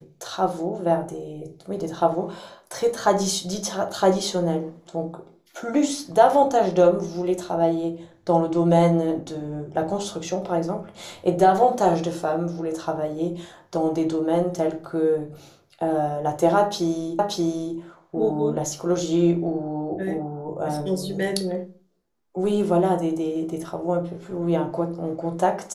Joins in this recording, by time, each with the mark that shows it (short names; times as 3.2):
17.19 repeat of the last 0.58 s